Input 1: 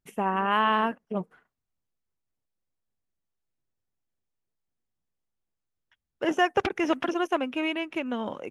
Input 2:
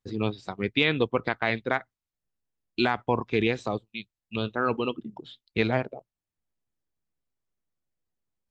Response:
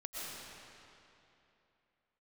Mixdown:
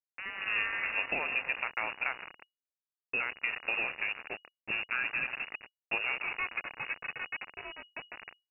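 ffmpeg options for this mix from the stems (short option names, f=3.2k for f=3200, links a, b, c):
-filter_complex "[0:a]highpass=f=220:p=1,adynamicequalizer=threshold=0.02:dfrequency=2100:dqfactor=0.7:tfrequency=2100:tqfactor=0.7:attack=5:release=100:ratio=0.375:range=1.5:mode=cutabove:tftype=highshelf,volume=-15.5dB,asplit=3[a][b][c];[b]volume=-3dB[d];[c]volume=-17.5dB[e];[1:a]acompressor=threshold=-26dB:ratio=6,aeval=exprs='val(0)+0.001*(sin(2*PI*50*n/s)+sin(2*PI*2*50*n/s)/2+sin(2*PI*3*50*n/s)/3+sin(2*PI*4*50*n/s)/4+sin(2*PI*5*50*n/s)/5)':c=same,adelay=350,volume=-4.5dB,asplit=3[f][g][h];[g]volume=-6dB[i];[h]volume=-21dB[j];[2:a]atrim=start_sample=2205[k];[d][i]amix=inputs=2:normalize=0[l];[l][k]afir=irnorm=-1:irlink=0[m];[e][j]amix=inputs=2:normalize=0,aecho=0:1:160|320|480|640|800:1|0.34|0.116|0.0393|0.0134[n];[a][f][m][n]amix=inputs=4:normalize=0,acrusher=bits=5:mix=0:aa=0.000001,lowpass=f=2.5k:t=q:w=0.5098,lowpass=f=2.5k:t=q:w=0.6013,lowpass=f=2.5k:t=q:w=0.9,lowpass=f=2.5k:t=q:w=2.563,afreqshift=-2900"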